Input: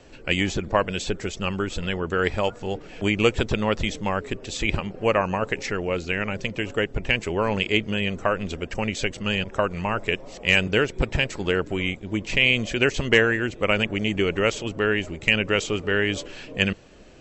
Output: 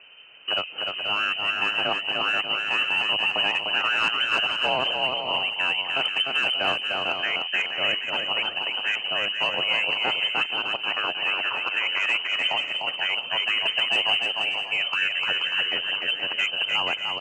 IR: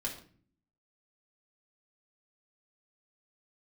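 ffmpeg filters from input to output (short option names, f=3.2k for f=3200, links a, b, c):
-af "areverse,lowpass=f=2.6k:t=q:w=0.5098,lowpass=f=2.6k:t=q:w=0.6013,lowpass=f=2.6k:t=q:w=0.9,lowpass=f=2.6k:t=q:w=2.563,afreqshift=-3100,highpass=f=99:w=0.5412,highpass=f=99:w=1.3066,acontrast=89,alimiter=limit=-8dB:level=0:latency=1:release=21,aecho=1:1:300|480|588|652.8|691.7:0.631|0.398|0.251|0.158|0.1,volume=-8dB"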